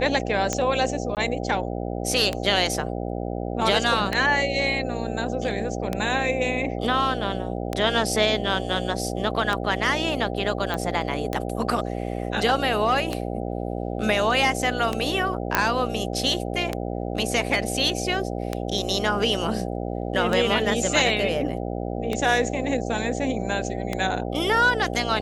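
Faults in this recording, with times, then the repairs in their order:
buzz 60 Hz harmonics 13 -29 dBFS
tick 33 1/3 rpm -10 dBFS
1.15–1.17 gap 18 ms
10.74 pop -14 dBFS
15.55 pop -3 dBFS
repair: de-click; de-hum 60 Hz, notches 13; interpolate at 1.15, 18 ms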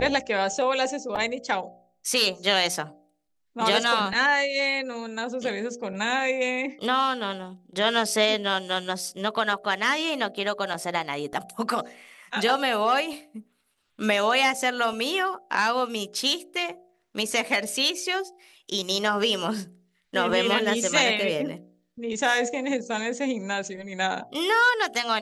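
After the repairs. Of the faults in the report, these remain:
none

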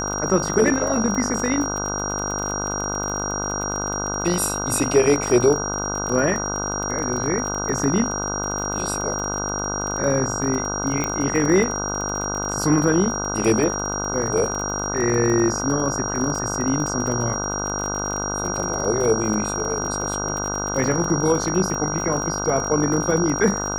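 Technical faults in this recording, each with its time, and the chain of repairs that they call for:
buzz 50 Hz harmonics 31 -28 dBFS
crackle 34/s -26 dBFS
tone 5700 Hz -27 dBFS
11.04 pop -10 dBFS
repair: de-click; de-hum 50 Hz, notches 31; notch 5700 Hz, Q 30

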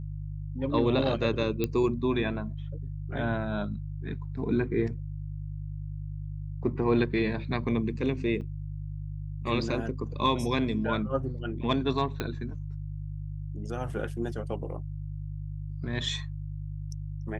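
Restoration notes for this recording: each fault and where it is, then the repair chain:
hum 50 Hz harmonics 3 -36 dBFS
1.64 pop -14 dBFS
8.41–8.42 gap 5.6 ms
12.2 pop -16 dBFS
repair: de-click; de-hum 50 Hz, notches 3; interpolate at 8.41, 5.6 ms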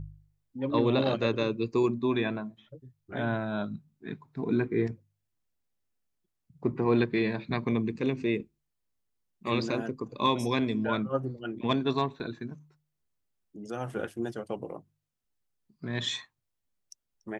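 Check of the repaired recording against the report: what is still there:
1.64 pop
12.2 pop

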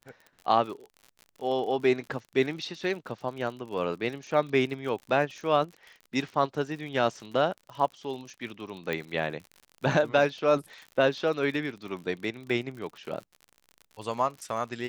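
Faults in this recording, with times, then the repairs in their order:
crackle 54/s -38 dBFS
8.93 pop -18 dBFS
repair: de-click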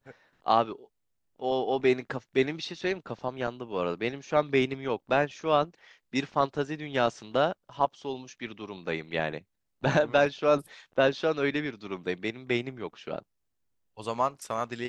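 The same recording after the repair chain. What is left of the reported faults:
8.93 pop

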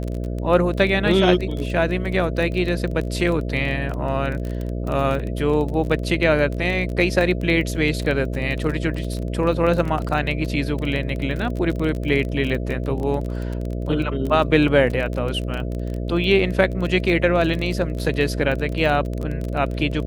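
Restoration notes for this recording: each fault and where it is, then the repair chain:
buzz 60 Hz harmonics 11 -26 dBFS
crackle 22/s -25 dBFS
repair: de-click; de-hum 60 Hz, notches 11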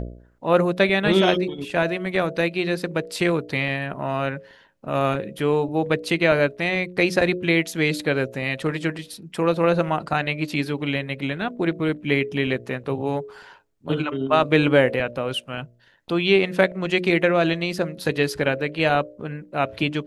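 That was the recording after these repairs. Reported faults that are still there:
none

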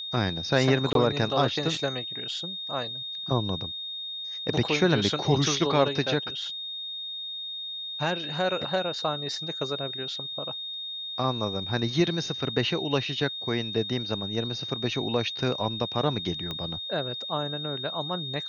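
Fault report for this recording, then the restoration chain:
tone 3700 Hz -33 dBFS
0.93–0.95 gap 22 ms
16.51 pop -19 dBFS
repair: de-click; notch 3700 Hz, Q 30; interpolate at 0.93, 22 ms

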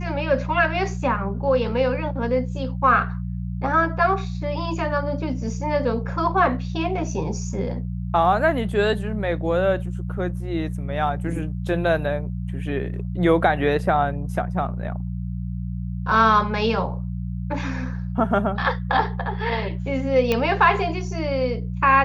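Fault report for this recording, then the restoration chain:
hum 60 Hz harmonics 3 -28 dBFS
20.32 pop -8 dBFS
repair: de-click; de-hum 60 Hz, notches 3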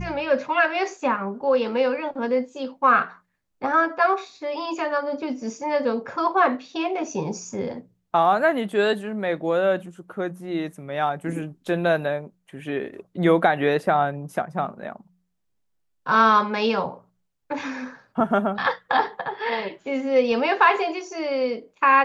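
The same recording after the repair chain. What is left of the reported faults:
none

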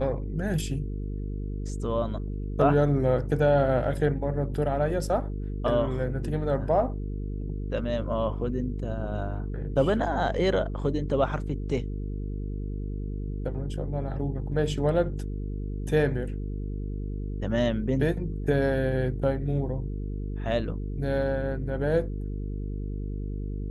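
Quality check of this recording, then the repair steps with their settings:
buzz 50 Hz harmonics 9 -32 dBFS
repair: de-hum 50 Hz, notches 9

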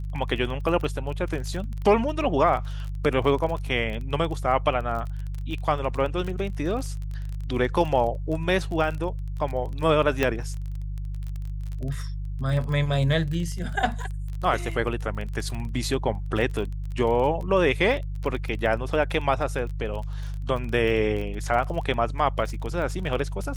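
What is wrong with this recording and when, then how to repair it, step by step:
crackle 26/s -31 dBFS
hum 50 Hz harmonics 3 -31 dBFS
10.23 pop -9 dBFS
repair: de-click; de-hum 50 Hz, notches 3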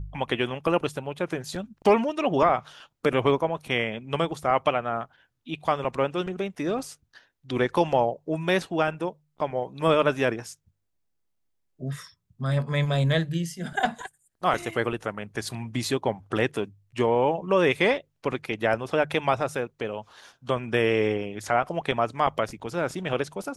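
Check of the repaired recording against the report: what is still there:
10.23 pop

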